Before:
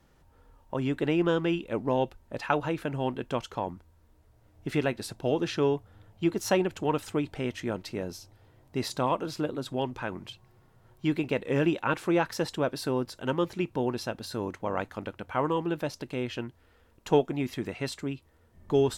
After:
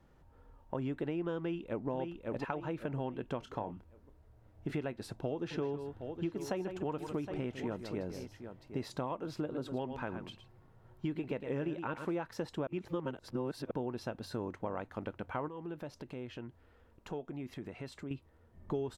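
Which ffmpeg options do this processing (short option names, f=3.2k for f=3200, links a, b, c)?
-filter_complex "[0:a]asplit=2[a][b];[b]afade=t=in:st=1.38:d=0.01,afade=t=out:st=1.89:d=0.01,aecho=0:1:550|1100|1650|2200:0.595662|0.208482|0.0729686|0.025539[c];[a][c]amix=inputs=2:normalize=0,asettb=1/sr,asplit=3[d][e][f];[d]atrim=end=3.394[g];[e]atrim=start=3.39:end=4.74,asetpts=PTS-STARTPTS,afade=t=in:d=0.004:c=qsin,afade=t=out:st=1.346:d=0.004:c=qsin,asplit=2[h][i];[i]adelay=28,volume=-10dB[j];[h][j]amix=inputs=2:normalize=0,atrim=end_sample=59535[k];[f]atrim=start=4.736[l];[g][k]acrossfade=d=0.004:c1=hsin:c2=qsin[m];[m][l]acrossfade=d=0.004:c1=qsin:c2=hsin,asplit=3[n][o][p];[n]afade=t=out:st=5.5:d=0.02[q];[o]aecho=1:1:155|765:0.251|0.188,afade=t=in:st=5.5:d=0.02,afade=t=out:st=8.8:d=0.02[r];[p]afade=t=in:st=8.8:d=0.02[s];[q][r][s]amix=inputs=3:normalize=0,asplit=3[t][u][v];[t]afade=t=out:st=9.5:d=0.02[w];[u]aecho=1:1:112:0.299,afade=t=in:st=9.5:d=0.02,afade=t=out:st=12.15:d=0.02[x];[v]afade=t=in:st=12.15:d=0.02[y];[w][x][y]amix=inputs=3:normalize=0,asettb=1/sr,asplit=3[z][aa][ab];[z]atrim=end=15.484[ac];[aa]atrim=start=15.48:end=18.11,asetpts=PTS-STARTPTS,afade=t=in:d=0.004:c=qsin,afade=t=out:st=2.626:d=0.004:c=qsin,acompressor=threshold=-42dB:ratio=2.5:attack=3.2:release=140:knee=1:detection=peak[ad];[ab]atrim=start=18.106[ae];[ac][ad]acrossfade=d=0.004:c1=hsin:c2=qsin[af];[af][ae]acrossfade=d=0.004:c1=qsin:c2=hsin,asplit=3[ag][ah][ai];[ag]atrim=end=12.672[aj];[ah]atrim=start=12.668:end=13.712,asetpts=PTS-STARTPTS,areverse[ak];[ai]atrim=start=13.708[al];[aj][ak]acrossfade=d=0.004:c1=hsin:c2=hsin[am];[am][al]acrossfade=d=0.004:c1=hsin:c2=hsin,acompressor=threshold=-32dB:ratio=6,highshelf=f=2.6k:g=-11,volume=-1dB"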